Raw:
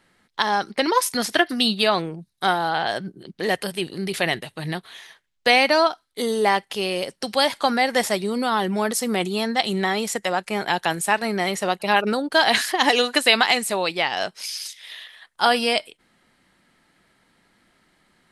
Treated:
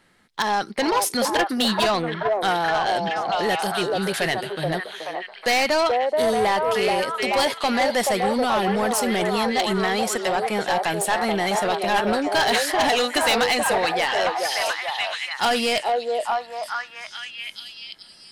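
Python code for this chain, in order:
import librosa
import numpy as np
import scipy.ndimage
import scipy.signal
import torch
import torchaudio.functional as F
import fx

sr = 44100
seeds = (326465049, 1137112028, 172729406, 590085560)

y = fx.echo_stepped(x, sr, ms=429, hz=560.0, octaves=0.7, feedback_pct=70, wet_db=-0.5)
y = 10.0 ** (-17.0 / 20.0) * np.tanh(y / 10.0 ** (-17.0 / 20.0))
y = y * 10.0 ** (2.0 / 20.0)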